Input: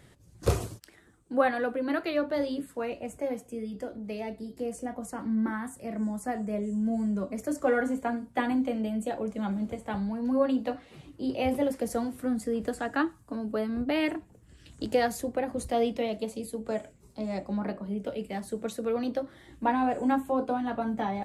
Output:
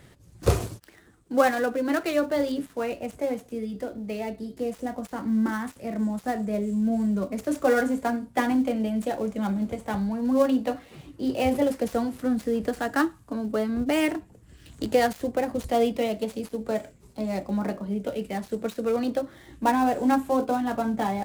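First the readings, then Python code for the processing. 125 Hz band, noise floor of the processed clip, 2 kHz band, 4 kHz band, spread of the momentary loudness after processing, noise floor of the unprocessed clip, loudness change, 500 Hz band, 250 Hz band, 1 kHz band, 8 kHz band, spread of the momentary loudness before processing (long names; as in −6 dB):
+4.0 dB, −54 dBFS, +4.0 dB, +4.0 dB, 10 LU, −58 dBFS, +4.0 dB, +4.0 dB, +4.0 dB, +4.0 dB, +3.0 dB, 10 LU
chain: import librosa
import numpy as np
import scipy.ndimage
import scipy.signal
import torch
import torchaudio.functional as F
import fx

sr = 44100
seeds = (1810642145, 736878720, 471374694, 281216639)

y = fx.dead_time(x, sr, dead_ms=0.065)
y = y * 10.0 ** (4.0 / 20.0)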